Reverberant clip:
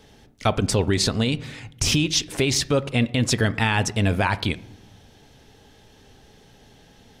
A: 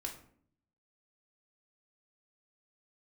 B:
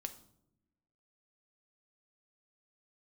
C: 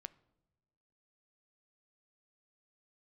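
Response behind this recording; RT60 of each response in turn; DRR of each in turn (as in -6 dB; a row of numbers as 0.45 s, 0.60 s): C; 0.60 s, no single decay rate, no single decay rate; 0.5 dB, 7.5 dB, 15.0 dB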